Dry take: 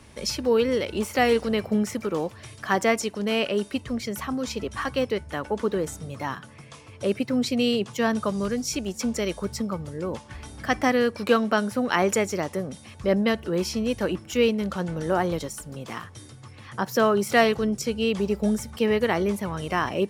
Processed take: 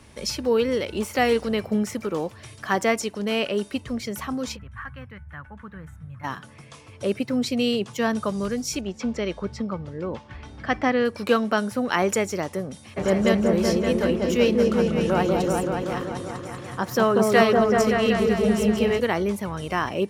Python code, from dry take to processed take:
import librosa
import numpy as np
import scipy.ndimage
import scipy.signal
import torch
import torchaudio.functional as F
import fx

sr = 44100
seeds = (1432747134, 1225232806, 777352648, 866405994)

y = fx.curve_eq(x, sr, hz=(130.0, 400.0, 1600.0, 5000.0, 13000.0), db=(0, -26, -3, -29, -20), at=(4.55, 6.23), fade=0.02)
y = fx.lowpass(y, sr, hz=3800.0, slope=12, at=(8.8, 11.04), fade=0.02)
y = fx.echo_opening(y, sr, ms=190, hz=750, octaves=1, feedback_pct=70, wet_db=0, at=(12.96, 18.99), fade=0.02)